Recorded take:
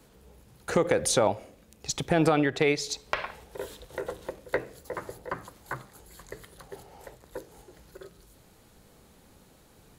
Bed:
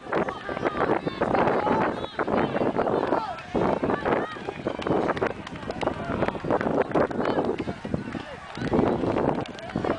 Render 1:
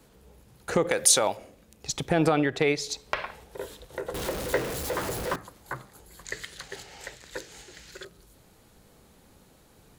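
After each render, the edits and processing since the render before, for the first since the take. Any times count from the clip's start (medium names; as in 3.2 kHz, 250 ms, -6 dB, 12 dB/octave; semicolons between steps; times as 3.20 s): 0.91–1.37 s: tilt EQ +3 dB/octave; 4.14–5.36 s: jump at every zero crossing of -28 dBFS; 6.25–8.05 s: high-order bell 3.5 kHz +14 dB 2.7 oct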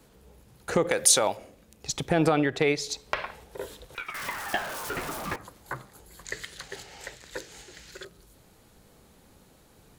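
3.94–5.38 s: ring modulator 2 kHz -> 630 Hz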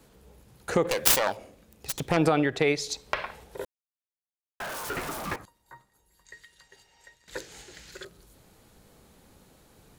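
0.83–2.17 s: self-modulated delay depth 0.61 ms; 3.65–4.60 s: mute; 5.45–7.28 s: feedback comb 930 Hz, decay 0.17 s, mix 90%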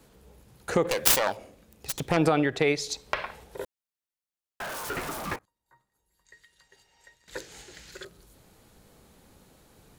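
5.39–7.56 s: fade in, from -22.5 dB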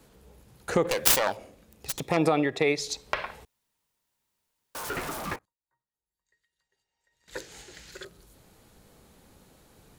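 2.00–2.78 s: comb of notches 1.5 kHz; 3.45–4.75 s: room tone; 5.29–7.36 s: dip -19 dB, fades 0.26 s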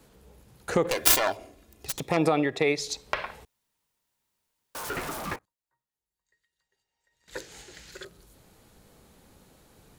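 0.95–1.86 s: comb 2.9 ms, depth 59%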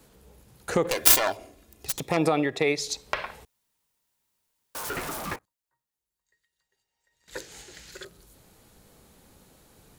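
treble shelf 5.7 kHz +4 dB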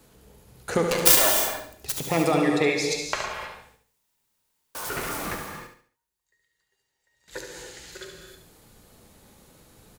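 on a send: feedback delay 71 ms, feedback 36%, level -7.5 dB; on the sum: gated-style reverb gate 340 ms flat, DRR 3 dB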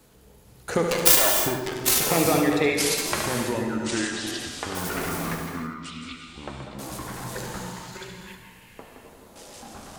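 ever faster or slower copies 447 ms, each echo -5 st, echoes 3, each echo -6 dB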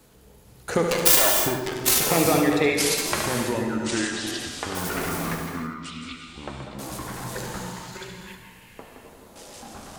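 trim +1 dB; peak limiter -3 dBFS, peak gain reduction 2.5 dB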